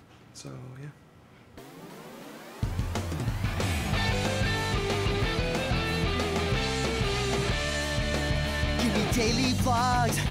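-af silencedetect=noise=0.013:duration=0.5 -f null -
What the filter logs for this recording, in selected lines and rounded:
silence_start: 0.90
silence_end: 1.58 | silence_duration: 0.68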